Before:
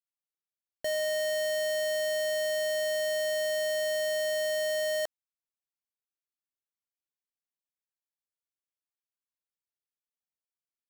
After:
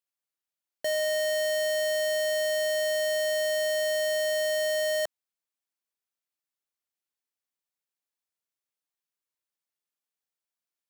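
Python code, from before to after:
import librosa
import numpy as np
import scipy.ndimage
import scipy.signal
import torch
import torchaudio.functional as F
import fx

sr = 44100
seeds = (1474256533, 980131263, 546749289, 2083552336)

y = fx.highpass(x, sr, hz=230.0, slope=6)
y = y * 10.0 ** (3.0 / 20.0)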